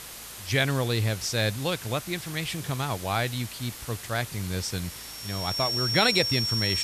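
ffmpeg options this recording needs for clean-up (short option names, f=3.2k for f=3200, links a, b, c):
-af "bandreject=f=55.6:t=h:w=4,bandreject=f=111.2:t=h:w=4,bandreject=f=166.8:t=h:w=4,bandreject=f=222.4:t=h:w=4,bandreject=f=5.5k:w=30,afftdn=nr=30:nf=-41"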